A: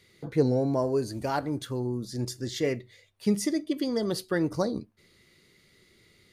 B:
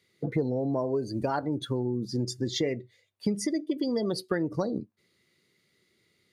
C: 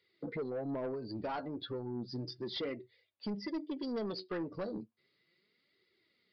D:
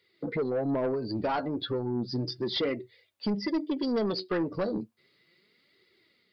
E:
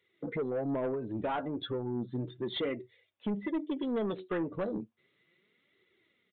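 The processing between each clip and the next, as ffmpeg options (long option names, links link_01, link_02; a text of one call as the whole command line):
ffmpeg -i in.wav -af "afftdn=noise_reduction=17:noise_floor=-38,highpass=110,acompressor=threshold=-34dB:ratio=6,volume=8.5dB" out.wav
ffmpeg -i in.wav -af "lowshelf=frequency=170:gain=-10,flanger=delay=2:depth=9.9:regen=29:speed=0.34:shape=triangular,aresample=11025,asoftclip=type=tanh:threshold=-31dB,aresample=44100,volume=-1dB" out.wav
ffmpeg -i in.wav -af "dynaudnorm=framelen=120:gausssize=5:maxgain=3dB,volume=6dB" out.wav
ffmpeg -i in.wav -af "aresample=8000,aresample=44100,volume=-4dB" out.wav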